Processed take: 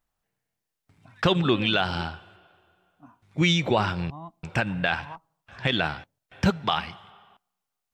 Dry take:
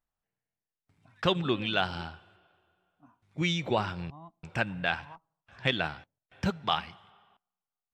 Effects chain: limiter -18.5 dBFS, peak gain reduction 8 dB; gain +8 dB

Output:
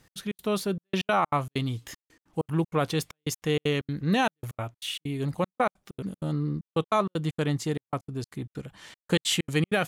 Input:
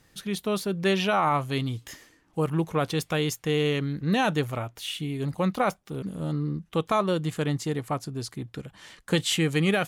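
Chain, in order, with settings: step gate "x.xx.xxxxx..x.x" 193 bpm -60 dB

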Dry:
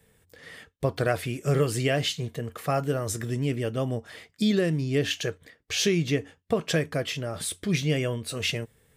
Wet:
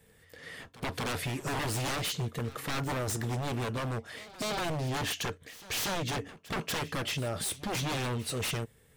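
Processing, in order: wavefolder -27.5 dBFS; pre-echo 0.238 s -18 dB

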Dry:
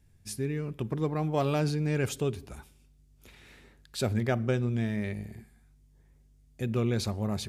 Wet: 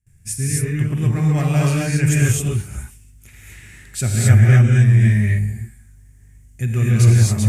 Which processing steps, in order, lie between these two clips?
gate with hold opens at -54 dBFS; graphic EQ 125/250/500/1000/2000/4000/8000 Hz +7/-6/-10/-9/+6/-12/+10 dB; non-linear reverb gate 0.29 s rising, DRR -4.5 dB; gain +7.5 dB

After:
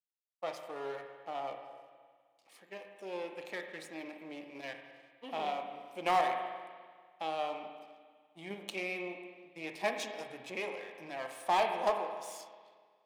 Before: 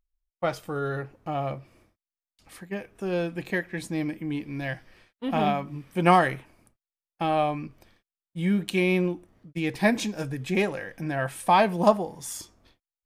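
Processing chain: half-wave gain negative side -12 dB; bell 1500 Hz -11 dB 0.59 oct; in parallel at +1 dB: level quantiser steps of 12 dB; on the sum: HPF 530 Hz 12 dB/oct; high shelf 8300 Hz -9 dB; spring tank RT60 1.7 s, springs 31/50 ms, chirp 75 ms, DRR 5 dB; overloaded stage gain 13.5 dB; gain -8 dB

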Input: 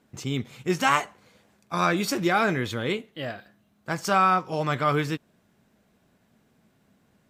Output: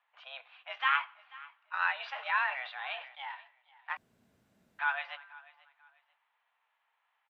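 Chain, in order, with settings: feedback echo 0.489 s, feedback 28%, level -21 dB; reverb, pre-delay 3 ms, DRR 16.5 dB; mistuned SSB +260 Hz 590–3100 Hz; 1.93–3.35 sustainer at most 98 dB/s; 3.97–4.79 room tone; gain -6 dB

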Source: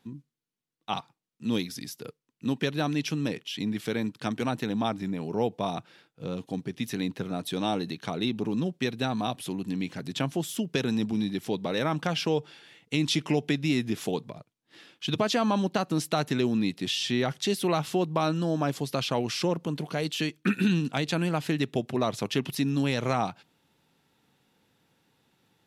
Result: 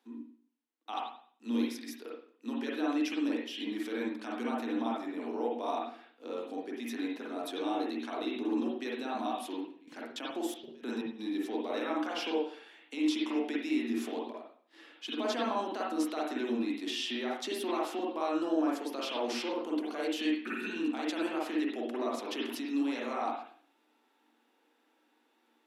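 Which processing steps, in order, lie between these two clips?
limiter -20.5 dBFS, peak gain reduction 8 dB; rippled Chebyshev high-pass 230 Hz, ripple 3 dB; 9.59–11.18 step gate "x.xx....xx.x.xx." 158 bpm -24 dB; reverb RT60 0.50 s, pre-delay 42 ms, DRR -4 dB; gain -5 dB

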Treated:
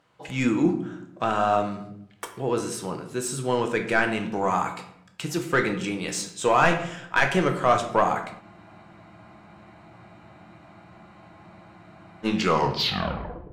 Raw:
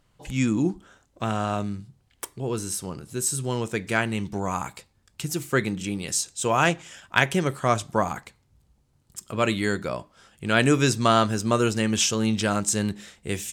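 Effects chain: tape stop at the end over 1.27 s; HPF 69 Hz; overdrive pedal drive 19 dB, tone 1400 Hz, clips at -1.5 dBFS; shoebox room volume 170 m³, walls mixed, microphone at 0.59 m; spectral freeze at 8.44, 3.80 s; gain -4.5 dB

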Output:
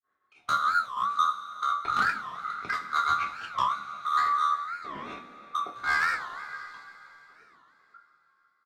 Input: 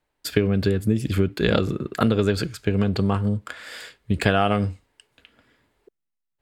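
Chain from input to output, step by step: four-band scrambler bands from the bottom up 2143; three-band isolator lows -15 dB, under 270 Hz, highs -21 dB, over 3700 Hz; in parallel at -2 dB: compressor, threshold -27 dBFS, peak gain reduction 12.5 dB; on the sum: hard clip -16 dBFS, distortion -10 dB; grains 0.169 s, grains 10/s, spray 11 ms, pitch spread up and down by 0 st; step gate "xx.xx.xx..xxx.." 125 bpm -24 dB; speed mistake 45 rpm record played at 33 rpm; doubler 25 ms -11 dB; on a send: delay with a stepping band-pass 0.167 s, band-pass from 250 Hz, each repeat 1.4 oct, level -9 dB; on the sum: two-slope reverb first 0.24 s, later 3.6 s, from -18 dB, DRR -1 dB; record warp 45 rpm, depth 250 cents; gain -6.5 dB

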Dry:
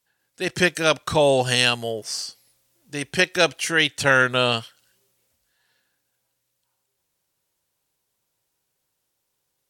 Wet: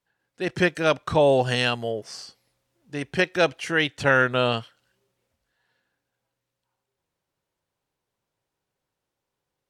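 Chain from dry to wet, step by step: LPF 1700 Hz 6 dB/oct

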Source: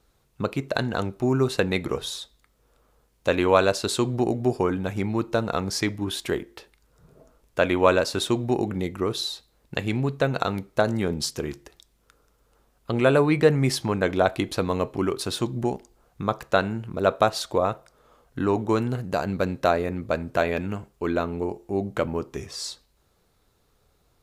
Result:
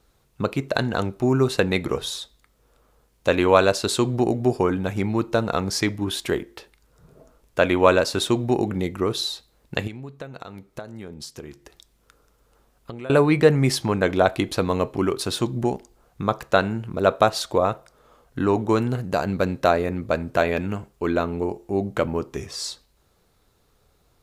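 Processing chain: 9.87–13.1 compressor 5:1, threshold -38 dBFS, peak gain reduction 21 dB; gain +2.5 dB

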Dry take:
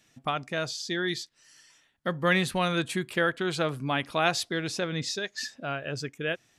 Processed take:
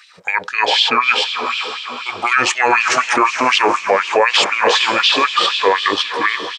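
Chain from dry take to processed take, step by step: pitch shift -6.5 st; in parallel at -3 dB: level quantiser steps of 21 dB; on the sum: diffused feedback echo 0.454 s, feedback 51%, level -9 dB; LFO high-pass sine 4 Hz 460–3100 Hz; maximiser +18.5 dB; gain -2 dB

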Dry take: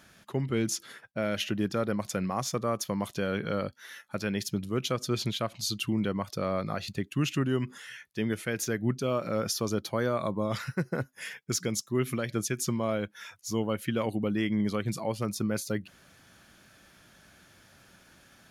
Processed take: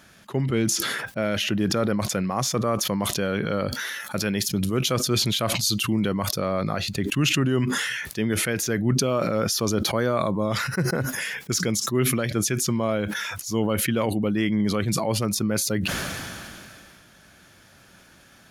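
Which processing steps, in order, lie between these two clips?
4–6.4 high shelf 6200 Hz +7.5 dB; sustainer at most 23 dB/s; gain +4.5 dB

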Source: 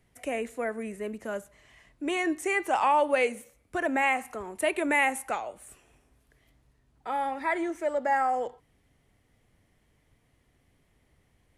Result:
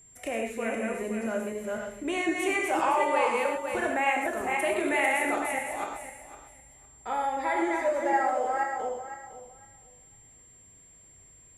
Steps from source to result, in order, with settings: regenerating reverse delay 0.254 s, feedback 41%, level -2 dB; compressor 1.5:1, threshold -32 dBFS, peak gain reduction 5.5 dB; non-linear reverb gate 0.15 s flat, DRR 1.5 dB; whine 7400 Hz -53 dBFS

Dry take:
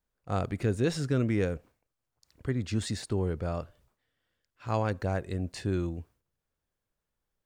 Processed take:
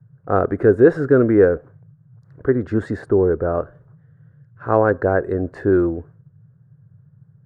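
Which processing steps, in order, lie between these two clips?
EQ curve 180 Hz 0 dB, 410 Hz +14 dB, 890 Hz +5 dB, 1600 Hz +11 dB, 2400 Hz -14 dB, 5300 Hz -21 dB; band noise 99–160 Hz -54 dBFS; 3.09–3.55 air absorption 400 m; gain +5.5 dB

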